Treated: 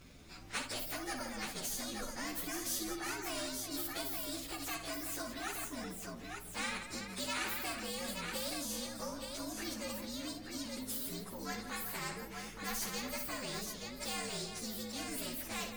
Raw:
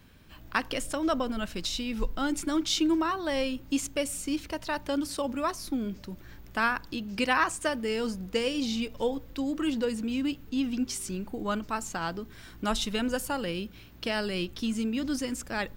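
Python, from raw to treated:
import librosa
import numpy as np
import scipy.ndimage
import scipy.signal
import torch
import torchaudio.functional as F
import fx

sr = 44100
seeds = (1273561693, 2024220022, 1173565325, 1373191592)

p1 = fx.partial_stretch(x, sr, pct=119)
p2 = p1 + fx.echo_multitap(p1, sr, ms=(58, 167, 375, 875), db=(-12.0, -18.0, -17.5, -9.5), dry=0)
p3 = fx.spectral_comp(p2, sr, ratio=2.0)
y = p3 * 10.0 ** (-8.0 / 20.0)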